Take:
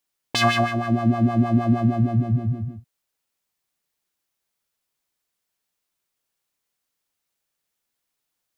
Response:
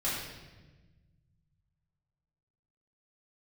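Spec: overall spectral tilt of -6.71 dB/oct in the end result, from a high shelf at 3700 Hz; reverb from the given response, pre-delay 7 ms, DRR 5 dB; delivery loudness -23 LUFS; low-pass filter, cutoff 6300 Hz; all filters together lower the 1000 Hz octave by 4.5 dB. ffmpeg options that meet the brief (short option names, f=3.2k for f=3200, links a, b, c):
-filter_complex "[0:a]lowpass=6.3k,equalizer=f=1k:t=o:g=-7,highshelf=f=3.7k:g=-7,asplit=2[a][b];[1:a]atrim=start_sample=2205,adelay=7[c];[b][c]afir=irnorm=-1:irlink=0,volume=-12dB[d];[a][d]amix=inputs=2:normalize=0,volume=-2dB"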